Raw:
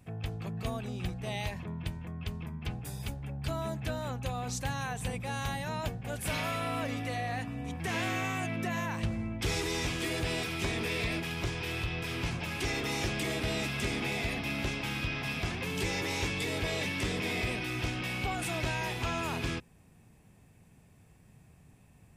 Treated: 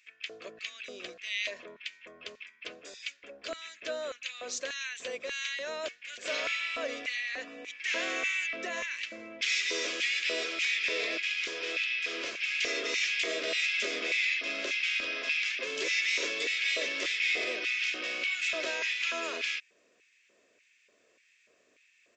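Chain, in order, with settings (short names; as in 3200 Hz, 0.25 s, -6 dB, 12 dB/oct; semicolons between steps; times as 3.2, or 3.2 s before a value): LFO high-pass square 1.7 Hz 600–2200 Hz; downsampling 16000 Hz; fixed phaser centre 340 Hz, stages 4; gain +3.5 dB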